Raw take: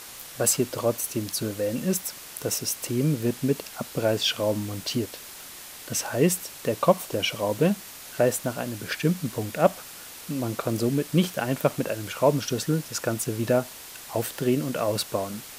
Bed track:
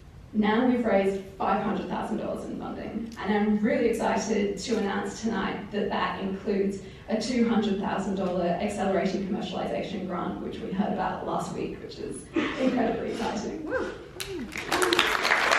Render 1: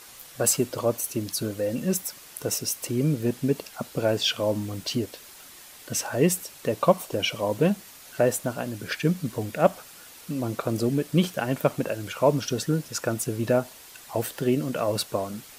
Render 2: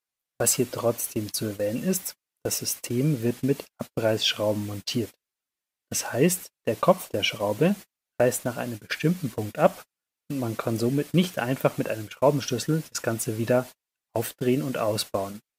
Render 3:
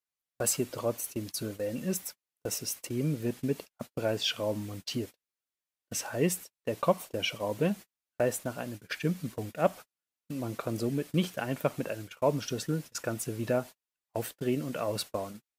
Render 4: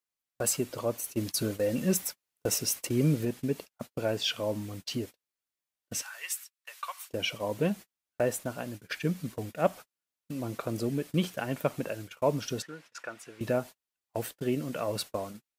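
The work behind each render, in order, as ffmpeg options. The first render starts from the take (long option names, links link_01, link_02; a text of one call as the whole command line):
ffmpeg -i in.wav -af "afftdn=noise_reduction=6:noise_floor=-43" out.wav
ffmpeg -i in.wav -af "agate=range=-43dB:threshold=-33dB:ratio=16:detection=peak,equalizer=frequency=2200:width=1.5:gain=2.5" out.wav
ffmpeg -i in.wav -af "volume=-6.5dB" out.wav
ffmpeg -i in.wav -filter_complex "[0:a]asettb=1/sr,asplit=3[link_01][link_02][link_03];[link_01]atrim=end=1.174[link_04];[link_02]atrim=start=1.17:end=3.25,asetpts=PTS-STARTPTS,afade=type=in:duration=0.004:curve=qsin,afade=type=out:start_time=2.076:duration=0.004:curve=qsin,acontrast=26[link_05];[link_03]atrim=start=3.246[link_06];[link_04][link_05]acrossfade=duration=0.004:curve1=hsin:curve2=qsin[link_07];[link_07][link_06]acrossfade=duration=0.004:curve1=qsin:curve2=hsin,asplit=3[link_08][link_09][link_10];[link_08]afade=type=out:start_time=6.01:duration=0.02[link_11];[link_09]highpass=frequency=1200:width=0.5412,highpass=frequency=1200:width=1.3066,afade=type=in:start_time=6.01:duration=0.02,afade=type=out:start_time=7.1:duration=0.02[link_12];[link_10]afade=type=in:start_time=7.1:duration=0.02[link_13];[link_11][link_12][link_13]amix=inputs=3:normalize=0,asettb=1/sr,asplit=3[link_14][link_15][link_16];[link_14]atrim=end=12.624[link_17];[link_15]atrim=start=12.62:end=13.41,asetpts=PTS-STARTPTS,afade=type=in:duration=0.004:curve=qsin,afade=type=out:start_time=0.786:duration=0.004:curve=qsin,bandpass=frequency=1700:width_type=q:width=0.86[link_18];[link_16]atrim=start=13.406[link_19];[link_17][link_18]acrossfade=duration=0.004:curve1=hsin:curve2=qsin[link_20];[link_20][link_19]acrossfade=duration=0.004:curve1=qsin:curve2=hsin" out.wav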